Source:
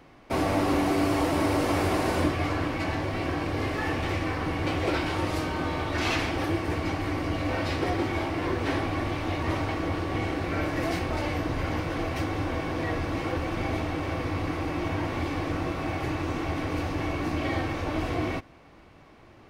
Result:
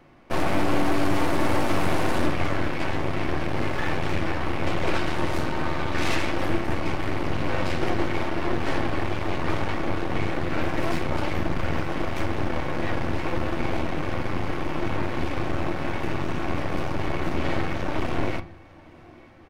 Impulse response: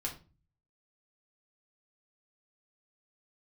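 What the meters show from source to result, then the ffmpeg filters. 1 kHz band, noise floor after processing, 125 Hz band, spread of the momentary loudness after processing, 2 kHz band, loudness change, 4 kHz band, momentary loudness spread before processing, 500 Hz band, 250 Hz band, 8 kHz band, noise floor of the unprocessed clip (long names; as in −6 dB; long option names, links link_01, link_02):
+1.5 dB, −48 dBFS, +0.5 dB, 5 LU, +2.0 dB, +1.0 dB, +1.0 dB, 5 LU, +1.5 dB, +0.5 dB, 0.0 dB, −53 dBFS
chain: -filter_complex "[0:a]aecho=1:1:902|1804|2706|3608:0.0891|0.0455|0.0232|0.0118,aeval=exprs='0.266*(cos(1*acos(clip(val(0)/0.266,-1,1)))-cos(1*PI/2))+0.0531*(cos(8*acos(clip(val(0)/0.266,-1,1)))-cos(8*PI/2))':channel_layout=same,asplit=2[link_01][link_02];[1:a]atrim=start_sample=2205,asetrate=48510,aresample=44100,lowpass=3500[link_03];[link_02][link_03]afir=irnorm=-1:irlink=0,volume=-4.5dB[link_04];[link_01][link_04]amix=inputs=2:normalize=0,volume=-4dB"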